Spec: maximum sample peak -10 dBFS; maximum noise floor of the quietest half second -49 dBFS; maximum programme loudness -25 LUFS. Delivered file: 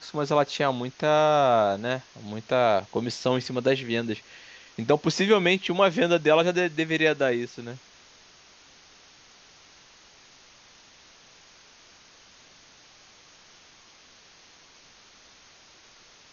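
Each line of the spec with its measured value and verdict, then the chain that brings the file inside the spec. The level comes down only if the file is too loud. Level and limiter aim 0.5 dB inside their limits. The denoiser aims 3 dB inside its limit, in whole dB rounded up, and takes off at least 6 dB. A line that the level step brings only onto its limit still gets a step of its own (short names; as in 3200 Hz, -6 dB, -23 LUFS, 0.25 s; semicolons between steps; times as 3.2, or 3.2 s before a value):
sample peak -7.0 dBFS: fail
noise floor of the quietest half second -54 dBFS: OK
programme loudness -24.0 LUFS: fail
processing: gain -1.5 dB; limiter -10.5 dBFS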